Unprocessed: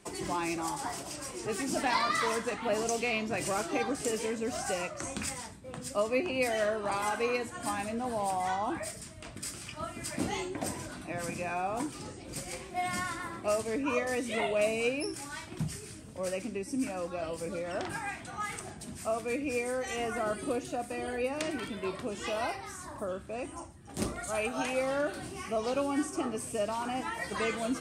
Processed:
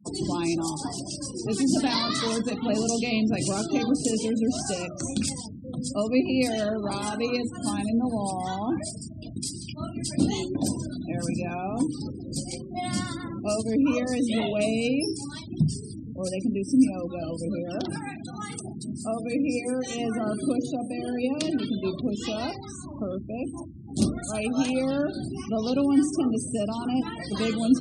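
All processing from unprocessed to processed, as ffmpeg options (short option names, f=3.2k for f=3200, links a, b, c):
-filter_complex "[0:a]asettb=1/sr,asplit=3[a][b][c];[a]atrim=end=17.544[d];[b]atrim=start=17.54:end=21.77,asetpts=PTS-STARTPTS,afade=t=in:d=0.004:c=qsin,afade=t=out:st=4.226:d=0.004:c=qsin,highpass=110,aecho=1:1:126|252|378:0.112|0.0348|0.0108,atrim=end_sample=186543[e];[c]atrim=start=21.766[f];[d][e]acrossfade=d=0.004:c1=hsin:c2=qsin[g];[g][f]acrossfade=d=0.004:c1=qsin:c2=hsin,equalizer=f=125:t=o:w=1:g=6,equalizer=f=250:t=o:w=1:g=9,equalizer=f=500:t=o:w=1:g=-3,equalizer=f=1k:t=o:w=1:g=-6,equalizer=f=2k:t=o:w=1:g=-9,equalizer=f=4k:t=o:w=1:g=7,afftfilt=real='re*gte(hypot(re,im),0.00891)':imag='im*gte(hypot(re,im),0.00891)':win_size=1024:overlap=0.75,bandreject=f=60:t=h:w=6,bandreject=f=120:t=h:w=6,bandreject=f=180:t=h:w=6,bandreject=f=240:t=h:w=6,bandreject=f=300:t=h:w=6,bandreject=f=360:t=h:w=6,bandreject=f=420:t=h:w=6,bandreject=f=480:t=h:w=6,volume=5dB"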